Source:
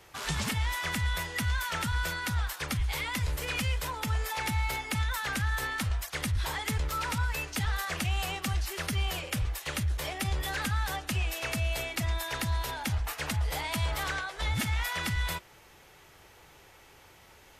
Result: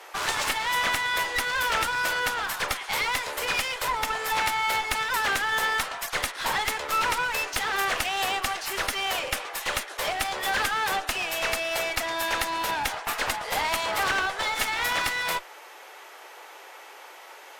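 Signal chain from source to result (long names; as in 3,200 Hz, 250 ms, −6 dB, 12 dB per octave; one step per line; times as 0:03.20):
Bessel high-pass filter 560 Hz, order 8
parametric band 780 Hz +7.5 dB 3 octaves
asymmetric clip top −38.5 dBFS
level +7 dB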